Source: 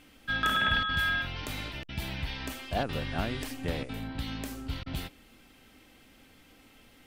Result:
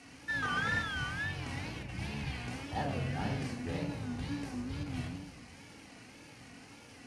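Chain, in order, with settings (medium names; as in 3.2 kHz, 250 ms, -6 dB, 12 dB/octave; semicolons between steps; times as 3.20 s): one-bit delta coder 64 kbps, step -40.5 dBFS; in parallel at -8 dB: Schmitt trigger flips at -42 dBFS; on the sum: simulated room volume 2200 m³, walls furnished, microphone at 3.9 m; wow and flutter 150 cents; cabinet simulation 100–9400 Hz, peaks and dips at 380 Hz -7 dB, 1.3 kHz -5 dB, 3.5 kHz -9 dB, 7.7 kHz -7 dB; trim -8 dB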